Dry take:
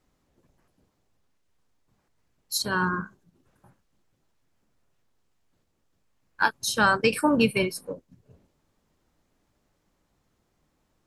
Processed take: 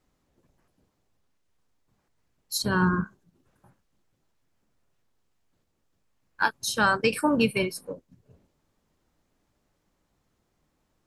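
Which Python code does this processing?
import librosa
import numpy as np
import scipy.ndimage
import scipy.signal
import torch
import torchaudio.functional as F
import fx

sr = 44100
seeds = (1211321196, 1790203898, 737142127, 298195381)

y = fx.low_shelf(x, sr, hz=320.0, db=10.5, at=(2.63, 3.04))
y = y * 10.0 ** (-1.5 / 20.0)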